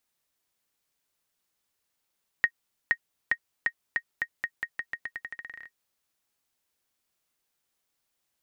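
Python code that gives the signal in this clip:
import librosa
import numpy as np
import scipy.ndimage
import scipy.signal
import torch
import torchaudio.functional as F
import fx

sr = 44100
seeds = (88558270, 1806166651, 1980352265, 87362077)

y = fx.bouncing_ball(sr, first_gap_s=0.47, ratio=0.86, hz=1870.0, decay_ms=66.0, level_db=-10.5)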